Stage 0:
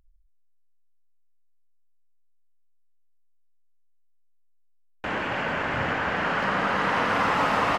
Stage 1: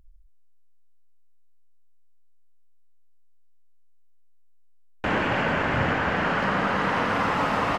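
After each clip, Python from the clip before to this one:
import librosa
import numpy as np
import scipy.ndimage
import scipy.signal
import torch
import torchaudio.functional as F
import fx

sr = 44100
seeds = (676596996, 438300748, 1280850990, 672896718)

y = fx.low_shelf(x, sr, hz=380.0, db=5.5)
y = fx.rider(y, sr, range_db=10, speed_s=0.5)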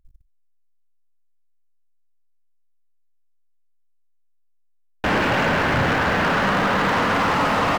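y = fx.leveller(x, sr, passes=3)
y = F.gain(torch.from_numpy(y), -3.5).numpy()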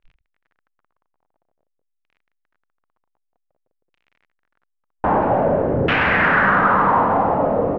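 y = fx.noise_reduce_blind(x, sr, reduce_db=13)
y = fx.dmg_crackle(y, sr, seeds[0], per_s=28.0, level_db=-44.0)
y = fx.filter_lfo_lowpass(y, sr, shape='saw_down', hz=0.51, low_hz=430.0, high_hz=2800.0, q=2.7)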